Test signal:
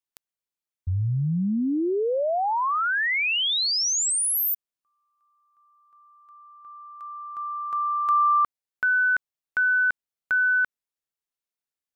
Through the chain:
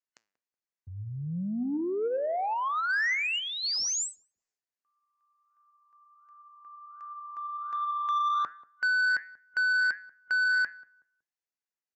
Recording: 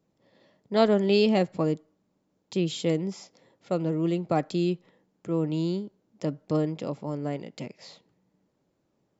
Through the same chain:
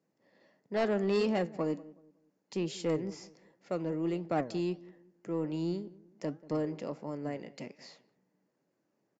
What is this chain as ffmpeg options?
ffmpeg -i in.wav -filter_complex "[0:a]highpass=180,flanger=delay=5.8:depth=4.6:regen=86:speed=1.4:shape=sinusoidal,superequalizer=11b=1.58:13b=0.501,aresample=16000,asoftclip=type=tanh:threshold=-22.5dB,aresample=44100,asplit=2[link_01][link_02];[link_02]adelay=186,lowpass=frequency=970:poles=1,volume=-19dB,asplit=2[link_03][link_04];[link_04]adelay=186,lowpass=frequency=970:poles=1,volume=0.34,asplit=2[link_05][link_06];[link_06]adelay=186,lowpass=frequency=970:poles=1,volume=0.34[link_07];[link_01][link_03][link_05][link_07]amix=inputs=4:normalize=0" out.wav

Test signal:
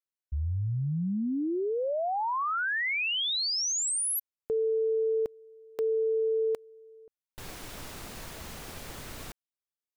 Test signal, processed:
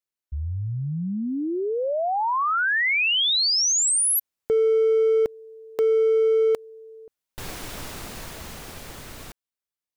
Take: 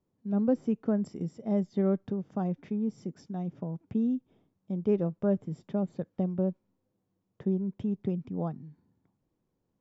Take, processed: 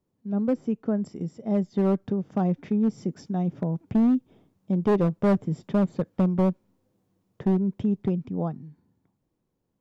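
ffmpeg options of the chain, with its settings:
ffmpeg -i in.wav -af "dynaudnorm=framelen=250:gausssize=17:maxgain=7dB,asoftclip=type=hard:threshold=-18dB,volume=1.5dB" out.wav

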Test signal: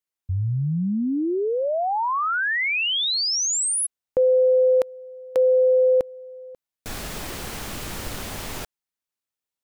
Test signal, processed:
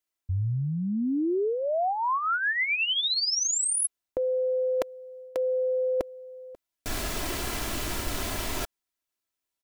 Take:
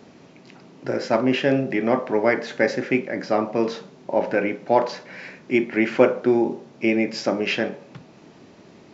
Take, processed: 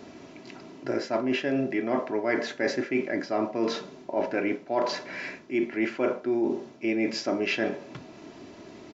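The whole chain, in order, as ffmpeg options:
ffmpeg -i in.wav -af "aecho=1:1:3:0.47,areverse,acompressor=threshold=-27dB:ratio=6:attack=43:release=200:knee=6:detection=rms,areverse,volume=1.5dB" out.wav

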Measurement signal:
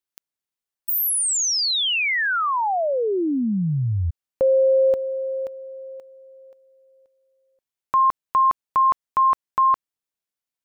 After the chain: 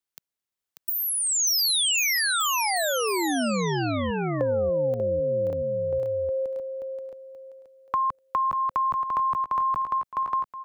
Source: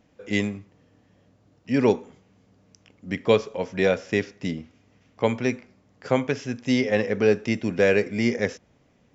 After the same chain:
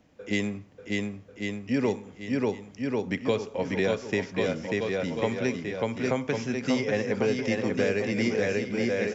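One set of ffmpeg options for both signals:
ffmpeg -i in.wav -filter_complex "[0:a]aecho=1:1:590|1092|1518|1880|2188:0.631|0.398|0.251|0.158|0.1,acrossover=split=180|6200[link_01][link_02][link_03];[link_01]acompressor=threshold=-36dB:ratio=4[link_04];[link_02]acompressor=threshold=-24dB:ratio=4[link_05];[link_03]acompressor=threshold=-27dB:ratio=4[link_06];[link_04][link_05][link_06]amix=inputs=3:normalize=0" out.wav

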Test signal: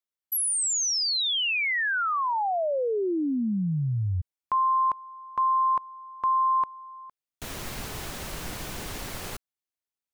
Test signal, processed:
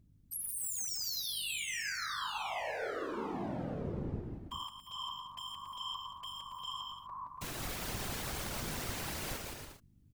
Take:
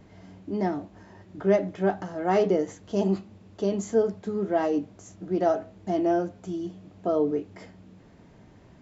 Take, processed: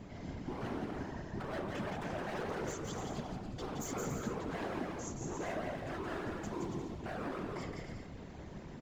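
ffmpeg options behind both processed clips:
ffmpeg -i in.wav -af "acompressor=threshold=-37dB:ratio=5:attack=0.34:release=32:knee=6,aeval=exprs='0.0119*(abs(mod(val(0)/0.0119+3,4)-2)-1)':channel_layout=same,aecho=1:1:170|280.5|352.3|399|429.4:0.631|0.398|0.251|0.158|0.1,aeval=exprs='val(0)+0.000562*(sin(2*PI*50*n/s)+sin(2*PI*2*50*n/s)/2+sin(2*PI*3*50*n/s)/3+sin(2*PI*4*50*n/s)/4+sin(2*PI*5*50*n/s)/5)':channel_layout=same,afftfilt=real='hypot(re,im)*cos(2*PI*random(0))':imag='hypot(re,im)*sin(2*PI*random(1))':win_size=512:overlap=0.75,volume=8.5dB" out.wav

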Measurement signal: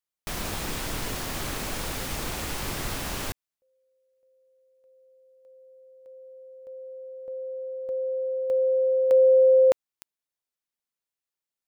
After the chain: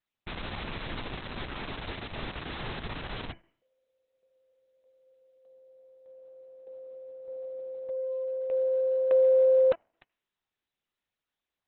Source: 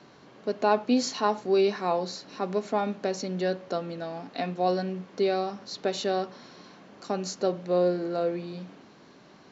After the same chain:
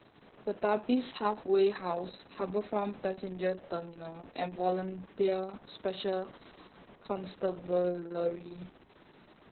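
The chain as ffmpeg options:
ffmpeg -i in.wav -af "bandreject=frequency=331.9:width_type=h:width=4,bandreject=frequency=663.8:width_type=h:width=4,bandreject=frequency=995.7:width_type=h:width=4,bandreject=frequency=1327.6:width_type=h:width=4,bandreject=frequency=1659.5:width_type=h:width=4,bandreject=frequency=1991.4:width_type=h:width=4,bandreject=frequency=2323.3:width_type=h:width=4,bandreject=frequency=2655.2:width_type=h:width=4,bandreject=frequency=2987.1:width_type=h:width=4,volume=-4dB" -ar 48000 -c:a libopus -b:a 6k out.opus

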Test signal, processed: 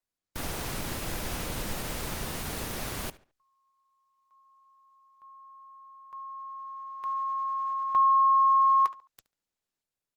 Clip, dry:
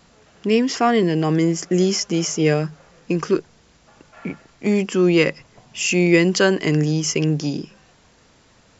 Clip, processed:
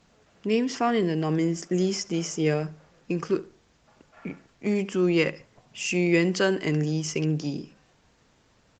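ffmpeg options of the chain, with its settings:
ffmpeg -i in.wav -filter_complex "[0:a]asplit=2[link_01][link_02];[link_02]adelay=71,lowpass=frequency=4600:poles=1,volume=-17.5dB,asplit=2[link_03][link_04];[link_04]adelay=71,lowpass=frequency=4600:poles=1,volume=0.3,asplit=2[link_05][link_06];[link_06]adelay=71,lowpass=frequency=4600:poles=1,volume=0.3[link_07];[link_01][link_03][link_05][link_07]amix=inputs=4:normalize=0,volume=-6.5dB" -ar 48000 -c:a libopus -b:a 20k out.opus

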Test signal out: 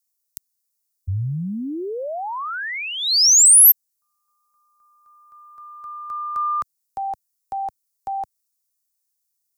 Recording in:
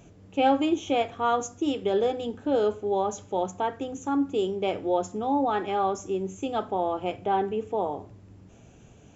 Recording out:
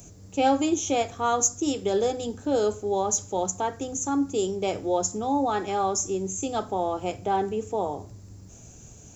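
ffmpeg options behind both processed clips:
ffmpeg -i in.wav -filter_complex "[0:a]acrossover=split=120|1900[link_01][link_02][link_03];[link_01]acontrast=77[link_04];[link_03]aexciter=amount=4.8:drive=7.7:freq=4400[link_05];[link_04][link_02][link_05]amix=inputs=3:normalize=0" out.wav

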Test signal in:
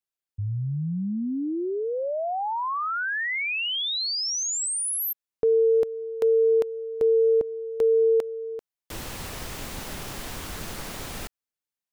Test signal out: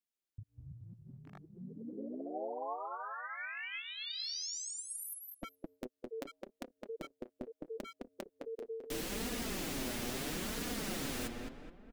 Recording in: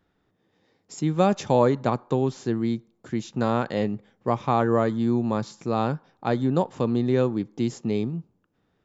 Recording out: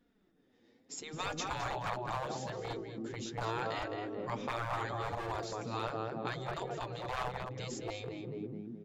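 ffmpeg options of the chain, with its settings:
ffmpeg -i in.wav -filter_complex "[0:a]equalizer=frequency=125:width_type=o:width=1:gain=-9,equalizer=frequency=250:width_type=o:width=1:gain=8,equalizer=frequency=1000:width_type=o:width=1:gain=-6,asplit=2[link_01][link_02];[link_02]adelay=212,lowpass=frequency=2200:poles=1,volume=-3.5dB,asplit=2[link_03][link_04];[link_04]adelay=212,lowpass=frequency=2200:poles=1,volume=0.48,asplit=2[link_05][link_06];[link_06]adelay=212,lowpass=frequency=2200:poles=1,volume=0.48,asplit=2[link_07][link_08];[link_08]adelay=212,lowpass=frequency=2200:poles=1,volume=0.48,asplit=2[link_09][link_10];[link_10]adelay=212,lowpass=frequency=2200:poles=1,volume=0.48,asplit=2[link_11][link_12];[link_12]adelay=212,lowpass=frequency=2200:poles=1,volume=0.48[link_13];[link_01][link_03][link_05][link_07][link_09][link_11][link_13]amix=inputs=7:normalize=0,flanger=delay=4.1:depth=4.3:regen=21:speed=0.75:shape=sinusoidal,volume=16.5dB,asoftclip=hard,volume=-16.5dB,afftfilt=real='re*lt(hypot(re,im),0.126)':imag='im*lt(hypot(re,im),0.126)':win_size=1024:overlap=0.75" out.wav

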